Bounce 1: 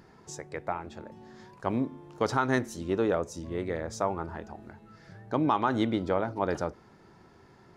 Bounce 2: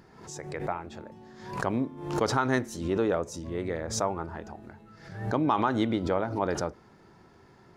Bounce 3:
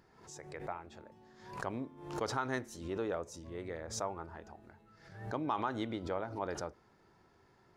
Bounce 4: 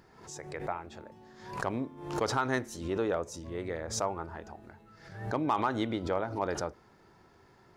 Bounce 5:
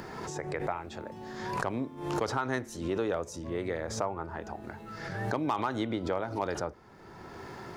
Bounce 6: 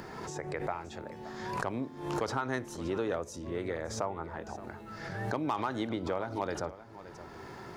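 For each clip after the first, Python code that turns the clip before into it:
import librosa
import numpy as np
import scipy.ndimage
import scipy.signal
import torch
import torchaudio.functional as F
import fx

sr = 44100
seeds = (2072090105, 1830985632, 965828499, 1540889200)

y1 = fx.pre_swell(x, sr, db_per_s=77.0)
y2 = fx.peak_eq(y1, sr, hz=190.0, db=-4.5, octaves=1.7)
y2 = y2 * 10.0 ** (-8.5 / 20.0)
y3 = np.clip(y2, -10.0 ** (-24.0 / 20.0), 10.0 ** (-24.0 / 20.0))
y3 = y3 * 10.0 ** (6.0 / 20.0)
y4 = fx.band_squash(y3, sr, depth_pct=70)
y5 = y4 + 10.0 ** (-15.5 / 20.0) * np.pad(y4, (int(573 * sr / 1000.0), 0))[:len(y4)]
y5 = y5 * 10.0 ** (-2.0 / 20.0)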